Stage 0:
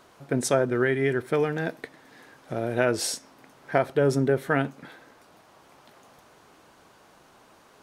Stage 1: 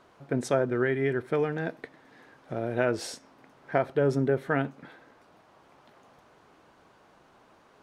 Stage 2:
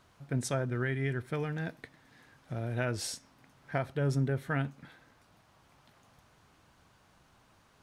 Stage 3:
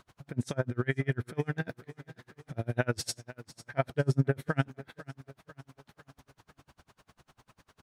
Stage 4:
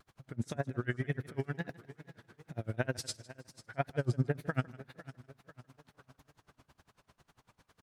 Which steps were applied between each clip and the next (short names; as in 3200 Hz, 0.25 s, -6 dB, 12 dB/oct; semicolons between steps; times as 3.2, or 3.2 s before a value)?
LPF 2800 Hz 6 dB/oct; gain -2.5 dB
EQ curve 100 Hz 0 dB, 400 Hz -16 dB, 11000 Hz -1 dB; gain +5 dB
feedback echo 0.495 s, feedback 49%, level -17 dB; dB-linear tremolo 10 Hz, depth 34 dB; gain +8 dB
wow and flutter 140 cents; feedback echo 0.155 s, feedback 41%, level -21.5 dB; gain -4.5 dB